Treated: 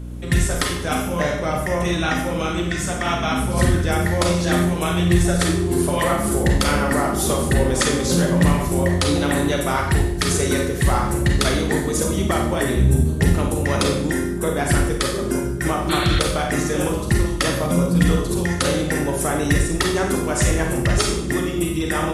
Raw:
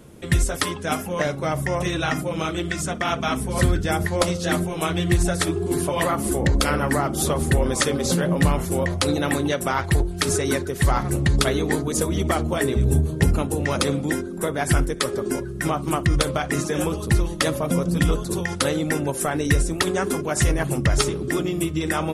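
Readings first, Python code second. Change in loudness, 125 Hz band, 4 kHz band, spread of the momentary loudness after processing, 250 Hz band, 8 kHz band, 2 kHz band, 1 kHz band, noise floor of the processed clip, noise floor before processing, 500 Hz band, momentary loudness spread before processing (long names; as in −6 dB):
+3.0 dB, +3.0 dB, +3.0 dB, 4 LU, +3.5 dB, +2.5 dB, +2.5 dB, +2.5 dB, −25 dBFS, −31 dBFS, +2.5 dB, 4 LU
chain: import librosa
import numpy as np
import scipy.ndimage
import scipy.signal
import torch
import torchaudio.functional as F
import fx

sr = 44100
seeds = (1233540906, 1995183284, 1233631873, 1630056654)

y = fx.rev_schroeder(x, sr, rt60_s=0.65, comb_ms=31, drr_db=1.0)
y = fx.add_hum(y, sr, base_hz=60, snr_db=12)
y = fx.spec_repair(y, sr, seeds[0], start_s=15.92, length_s=0.25, low_hz=1300.0, high_hz=4500.0, source='after')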